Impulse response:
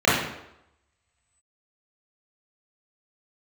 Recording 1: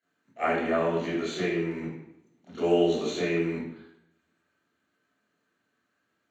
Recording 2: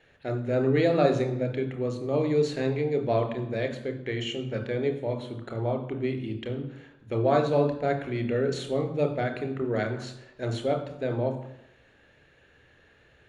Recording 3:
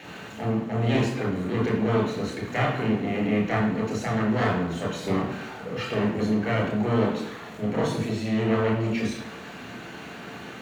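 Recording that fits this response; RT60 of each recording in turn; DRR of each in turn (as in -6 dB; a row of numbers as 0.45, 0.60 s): 1; 0.85, 0.85, 0.85 s; -11.0, 5.5, -2.0 dB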